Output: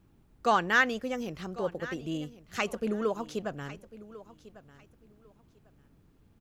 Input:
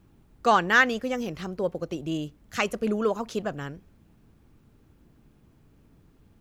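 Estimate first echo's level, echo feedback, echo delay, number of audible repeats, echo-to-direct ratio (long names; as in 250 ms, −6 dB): −17.5 dB, 21%, 1,098 ms, 2, −17.5 dB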